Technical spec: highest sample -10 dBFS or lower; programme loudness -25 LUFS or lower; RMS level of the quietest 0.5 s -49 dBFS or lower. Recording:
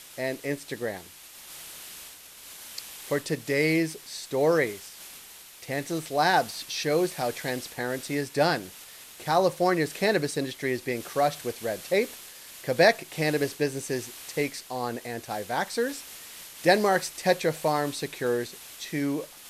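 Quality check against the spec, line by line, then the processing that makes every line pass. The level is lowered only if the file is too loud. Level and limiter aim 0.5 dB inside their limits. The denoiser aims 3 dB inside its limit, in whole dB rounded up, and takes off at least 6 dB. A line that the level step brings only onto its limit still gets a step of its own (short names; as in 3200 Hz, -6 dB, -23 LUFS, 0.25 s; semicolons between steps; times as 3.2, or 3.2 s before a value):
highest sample -7.0 dBFS: fail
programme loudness -27.5 LUFS: OK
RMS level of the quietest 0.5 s -47 dBFS: fail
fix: denoiser 6 dB, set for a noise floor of -47 dBFS; limiter -10.5 dBFS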